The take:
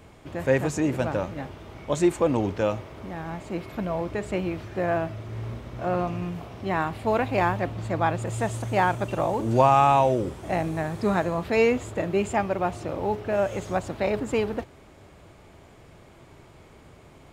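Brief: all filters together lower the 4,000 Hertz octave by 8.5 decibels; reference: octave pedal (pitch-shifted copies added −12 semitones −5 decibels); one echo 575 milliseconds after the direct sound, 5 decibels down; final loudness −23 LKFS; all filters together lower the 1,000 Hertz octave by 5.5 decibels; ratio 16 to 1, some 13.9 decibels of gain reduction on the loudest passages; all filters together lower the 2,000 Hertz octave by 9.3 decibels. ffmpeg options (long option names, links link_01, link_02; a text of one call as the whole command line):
ffmpeg -i in.wav -filter_complex "[0:a]equalizer=frequency=1000:width_type=o:gain=-5.5,equalizer=frequency=2000:width_type=o:gain=-8.5,equalizer=frequency=4000:width_type=o:gain=-7.5,acompressor=threshold=-30dB:ratio=16,aecho=1:1:575:0.562,asplit=2[link_01][link_02];[link_02]asetrate=22050,aresample=44100,atempo=2,volume=-5dB[link_03];[link_01][link_03]amix=inputs=2:normalize=0,volume=11dB" out.wav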